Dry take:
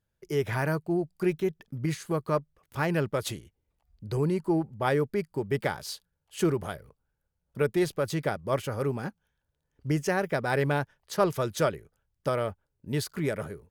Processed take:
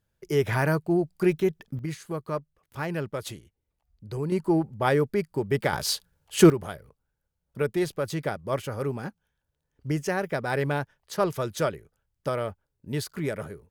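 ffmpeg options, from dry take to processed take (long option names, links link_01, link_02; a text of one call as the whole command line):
ffmpeg -i in.wav -af "asetnsamples=nb_out_samples=441:pad=0,asendcmd='1.79 volume volume -3.5dB;4.32 volume volume 3dB;5.73 volume volume 10.5dB;6.5 volume volume -0.5dB',volume=4dB" out.wav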